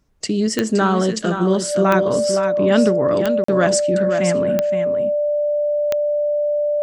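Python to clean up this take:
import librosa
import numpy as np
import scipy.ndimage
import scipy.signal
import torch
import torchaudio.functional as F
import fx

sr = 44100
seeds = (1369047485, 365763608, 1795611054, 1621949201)

y = fx.fix_declick_ar(x, sr, threshold=10.0)
y = fx.notch(y, sr, hz=590.0, q=30.0)
y = fx.fix_interpolate(y, sr, at_s=(3.44,), length_ms=44.0)
y = fx.fix_echo_inverse(y, sr, delay_ms=518, level_db=-7.5)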